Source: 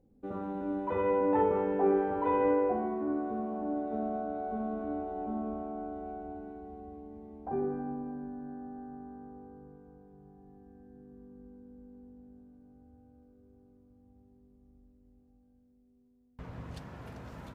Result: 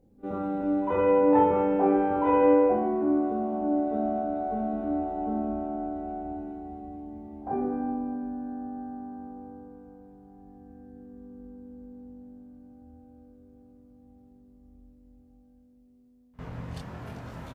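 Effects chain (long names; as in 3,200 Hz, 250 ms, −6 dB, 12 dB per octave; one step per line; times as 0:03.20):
double-tracking delay 24 ms −2 dB
echo ahead of the sound 51 ms −23 dB
level +3 dB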